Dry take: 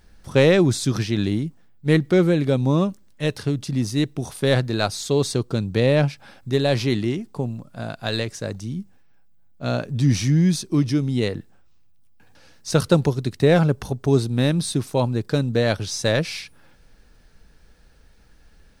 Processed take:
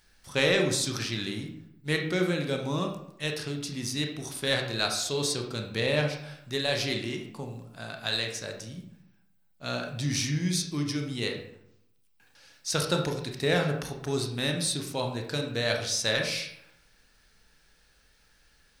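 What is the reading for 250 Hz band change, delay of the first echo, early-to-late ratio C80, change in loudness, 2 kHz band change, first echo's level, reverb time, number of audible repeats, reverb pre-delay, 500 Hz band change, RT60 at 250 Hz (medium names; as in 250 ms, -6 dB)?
-11.5 dB, no echo, 9.5 dB, -7.5 dB, -1.5 dB, no echo, 0.75 s, no echo, 23 ms, -9.0 dB, 0.90 s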